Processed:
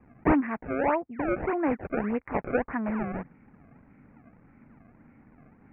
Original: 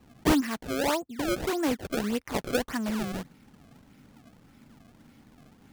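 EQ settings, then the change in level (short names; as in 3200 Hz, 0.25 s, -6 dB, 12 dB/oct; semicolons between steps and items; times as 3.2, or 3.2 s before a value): steep low-pass 2400 Hz 72 dB/oct; dynamic EQ 810 Hz, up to +4 dB, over -42 dBFS, Q 1.5; 0.0 dB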